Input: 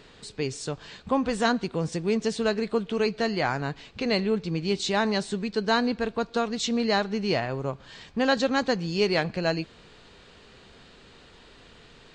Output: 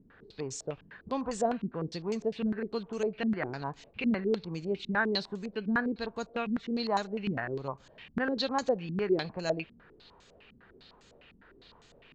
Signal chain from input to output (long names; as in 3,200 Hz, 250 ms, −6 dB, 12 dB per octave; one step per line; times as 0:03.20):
low-pass on a step sequencer 9.9 Hz 230–6,900 Hz
level −9 dB